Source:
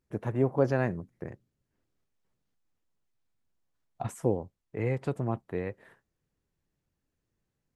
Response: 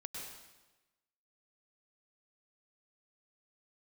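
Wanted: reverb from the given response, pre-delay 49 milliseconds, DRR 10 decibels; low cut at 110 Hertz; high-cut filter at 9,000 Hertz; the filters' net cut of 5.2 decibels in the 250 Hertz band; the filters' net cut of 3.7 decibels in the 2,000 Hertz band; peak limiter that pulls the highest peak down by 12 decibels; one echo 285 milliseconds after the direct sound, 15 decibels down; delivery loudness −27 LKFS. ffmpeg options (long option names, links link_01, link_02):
-filter_complex "[0:a]highpass=110,lowpass=9000,equalizer=frequency=250:width_type=o:gain=-6.5,equalizer=frequency=2000:width_type=o:gain=-4.5,alimiter=level_in=3dB:limit=-24dB:level=0:latency=1,volume=-3dB,aecho=1:1:285:0.178,asplit=2[link_01][link_02];[1:a]atrim=start_sample=2205,adelay=49[link_03];[link_02][link_03]afir=irnorm=-1:irlink=0,volume=-8dB[link_04];[link_01][link_04]amix=inputs=2:normalize=0,volume=12.5dB"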